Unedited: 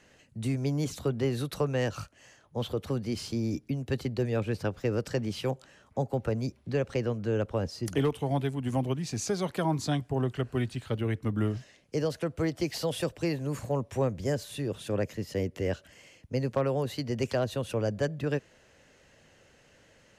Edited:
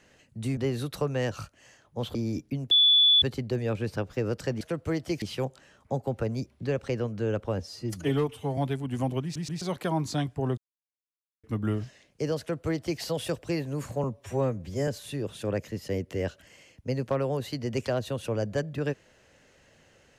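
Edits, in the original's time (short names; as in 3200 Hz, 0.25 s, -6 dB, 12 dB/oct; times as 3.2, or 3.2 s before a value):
0.57–1.16 cut
2.74–3.33 cut
3.89 add tone 3450 Hz -16 dBFS 0.51 s
7.66–8.31 stretch 1.5×
8.96 stutter in place 0.13 s, 3 plays
10.31–11.17 mute
12.13–12.74 copy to 5.28
13.77–14.33 stretch 1.5×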